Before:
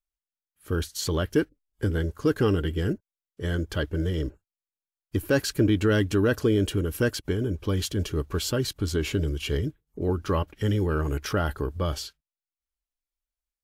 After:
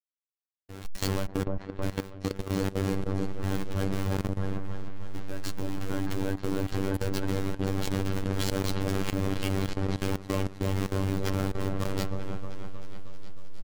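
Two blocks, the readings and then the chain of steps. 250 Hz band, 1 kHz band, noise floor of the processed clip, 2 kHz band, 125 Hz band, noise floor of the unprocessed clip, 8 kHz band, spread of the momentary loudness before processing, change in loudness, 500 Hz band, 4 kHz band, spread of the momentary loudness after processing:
−3.5 dB, −1.5 dB, −52 dBFS, −6.0 dB, −3.5 dB, below −85 dBFS, −4.5 dB, 9 LU, −4.5 dB, −6.5 dB, −5.0 dB, 11 LU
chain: hold until the input has moved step −24 dBFS
comb filter 6.7 ms, depth 35%
brickwall limiter −21.5 dBFS, peak gain reduction 11 dB
hard clipping −26 dBFS, distortion −16 dB
on a send: echo whose low-pass opens from repeat to repeat 313 ms, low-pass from 750 Hz, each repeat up 1 octave, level 0 dB
on the sum: phases set to zero 96.5 Hz
output level in coarse steps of 15 dB
level +3 dB

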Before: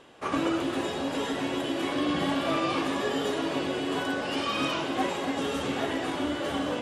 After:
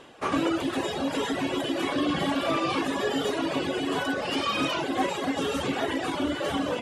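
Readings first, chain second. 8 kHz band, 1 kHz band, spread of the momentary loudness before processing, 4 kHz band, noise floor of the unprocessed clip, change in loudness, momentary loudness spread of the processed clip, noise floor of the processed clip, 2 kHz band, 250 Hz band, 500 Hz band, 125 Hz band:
+2.0 dB, +1.5 dB, 3 LU, +1.5 dB, −33 dBFS, +1.5 dB, 3 LU, −33 dBFS, +1.5 dB, +1.5 dB, +1.5 dB, +1.5 dB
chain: reverb reduction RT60 1 s
in parallel at −3 dB: brickwall limiter −24.5 dBFS, peak gain reduction 8.5 dB

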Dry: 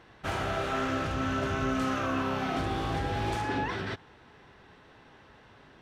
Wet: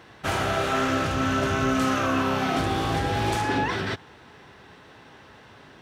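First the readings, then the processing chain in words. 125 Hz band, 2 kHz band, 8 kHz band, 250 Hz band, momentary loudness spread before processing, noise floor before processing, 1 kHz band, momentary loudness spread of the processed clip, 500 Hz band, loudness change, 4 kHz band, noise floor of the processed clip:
+5.5 dB, +6.5 dB, +10.0 dB, +6.0 dB, 4 LU, −56 dBFS, +6.0 dB, 4 LU, +6.0 dB, +6.0 dB, +8.0 dB, −50 dBFS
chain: high-pass filter 65 Hz
high-shelf EQ 5,700 Hz +7 dB
level +6 dB

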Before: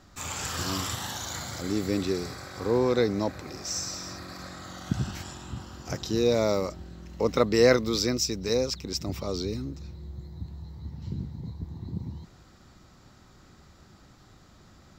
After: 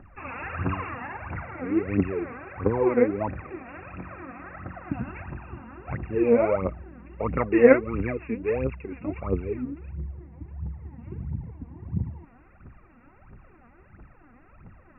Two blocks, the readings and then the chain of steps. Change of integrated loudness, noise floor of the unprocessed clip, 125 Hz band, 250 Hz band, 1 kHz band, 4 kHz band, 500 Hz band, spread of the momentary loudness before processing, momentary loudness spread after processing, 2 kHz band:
+2.0 dB, −55 dBFS, +1.0 dB, +2.5 dB, +2.0 dB, below −25 dB, +2.5 dB, 17 LU, 19 LU, +2.5 dB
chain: phase shifter 1.5 Hz, delay 4.4 ms, feedback 77%
linear-phase brick-wall low-pass 2,800 Hz
level −1.5 dB

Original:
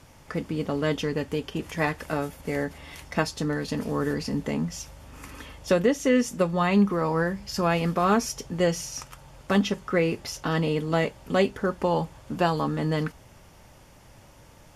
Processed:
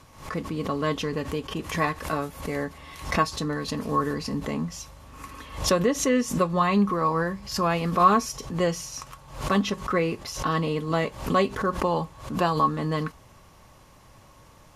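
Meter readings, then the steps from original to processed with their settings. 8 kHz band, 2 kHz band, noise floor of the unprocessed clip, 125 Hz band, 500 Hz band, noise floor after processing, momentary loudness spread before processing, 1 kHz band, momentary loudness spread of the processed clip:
+2.5 dB, −0.5 dB, −52 dBFS, −0.5 dB, −1.0 dB, −53 dBFS, 12 LU, +5.0 dB, 13 LU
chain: hollow resonant body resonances 1,100/4,000 Hz, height 15 dB, ringing for 60 ms
background raised ahead of every attack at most 110 dB per second
level −1.5 dB

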